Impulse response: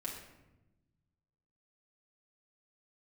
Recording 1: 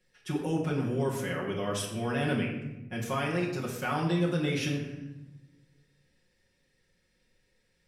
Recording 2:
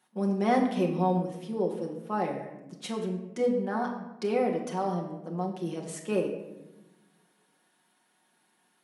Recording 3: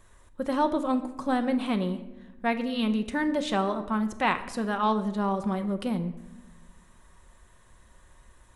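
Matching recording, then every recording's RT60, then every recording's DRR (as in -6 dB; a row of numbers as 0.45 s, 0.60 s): 1; 1.0 s, 1.0 s, 1.0 s; -5.0 dB, -0.5 dB, 7.5 dB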